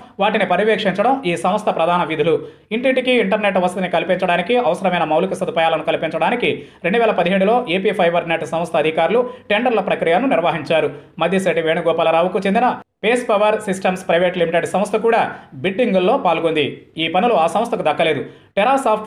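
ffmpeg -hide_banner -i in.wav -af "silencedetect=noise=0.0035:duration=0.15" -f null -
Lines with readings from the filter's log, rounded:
silence_start: 12.82
silence_end: 13.03 | silence_duration: 0.20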